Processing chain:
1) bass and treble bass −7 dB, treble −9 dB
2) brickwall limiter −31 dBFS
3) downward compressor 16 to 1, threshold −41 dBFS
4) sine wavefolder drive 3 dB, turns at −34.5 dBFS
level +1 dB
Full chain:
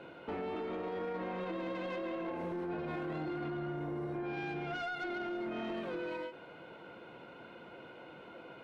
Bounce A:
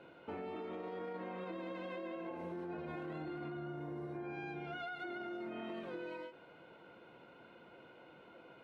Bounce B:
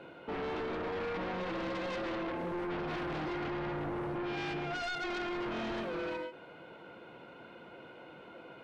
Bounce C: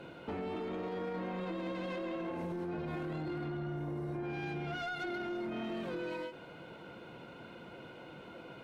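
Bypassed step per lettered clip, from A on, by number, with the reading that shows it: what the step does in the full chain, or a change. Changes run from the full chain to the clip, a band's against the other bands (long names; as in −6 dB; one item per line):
4, distortion level −18 dB
3, average gain reduction 4.0 dB
1, 125 Hz band +4.5 dB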